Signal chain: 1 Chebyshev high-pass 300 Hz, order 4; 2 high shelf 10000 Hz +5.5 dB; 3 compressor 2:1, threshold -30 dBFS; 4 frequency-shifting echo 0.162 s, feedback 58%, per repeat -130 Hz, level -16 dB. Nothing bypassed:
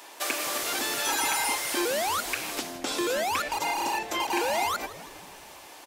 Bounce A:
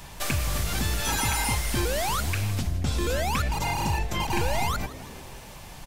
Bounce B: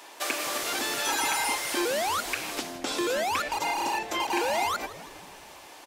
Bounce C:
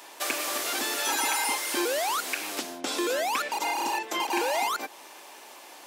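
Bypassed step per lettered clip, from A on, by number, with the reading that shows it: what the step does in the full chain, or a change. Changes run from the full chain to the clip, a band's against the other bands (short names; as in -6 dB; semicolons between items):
1, 125 Hz band +26.5 dB; 2, 8 kHz band -1.5 dB; 4, echo-to-direct -14.0 dB to none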